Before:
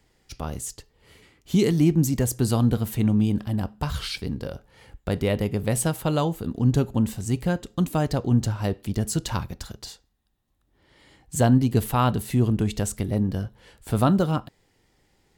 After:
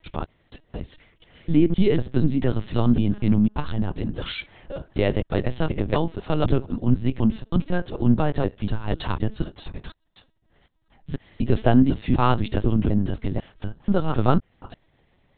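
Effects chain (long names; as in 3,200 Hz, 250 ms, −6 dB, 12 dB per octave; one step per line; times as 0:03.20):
slices reordered back to front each 248 ms, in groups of 2
linear-prediction vocoder at 8 kHz pitch kept
level +2.5 dB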